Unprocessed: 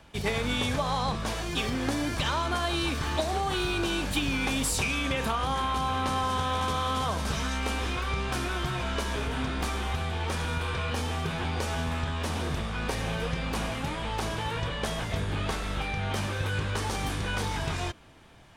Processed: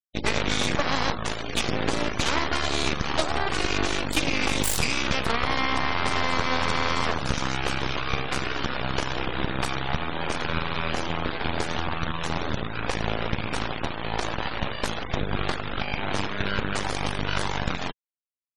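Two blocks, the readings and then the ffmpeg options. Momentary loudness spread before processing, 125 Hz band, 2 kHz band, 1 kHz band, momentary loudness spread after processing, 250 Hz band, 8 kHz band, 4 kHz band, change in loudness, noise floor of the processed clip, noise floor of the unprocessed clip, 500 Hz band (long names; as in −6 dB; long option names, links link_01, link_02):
4 LU, −1.0 dB, +5.0 dB, +2.5 dB, 5 LU, +2.0 dB, +2.5 dB, +4.0 dB, +2.5 dB, −34 dBFS, −34 dBFS, +3.0 dB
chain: -af "aeval=exprs='0.178*(cos(1*acos(clip(val(0)/0.178,-1,1)))-cos(1*PI/2))+0.0251*(cos(3*acos(clip(val(0)/0.178,-1,1)))-cos(3*PI/2))+0.0398*(cos(6*acos(clip(val(0)/0.178,-1,1)))-cos(6*PI/2))+0.0178*(cos(7*acos(clip(val(0)/0.178,-1,1)))-cos(7*PI/2))':channel_layout=same,afftfilt=real='re*gte(hypot(re,im),0.0126)':imag='im*gte(hypot(re,im),0.0126)':win_size=1024:overlap=0.75,volume=4.5dB"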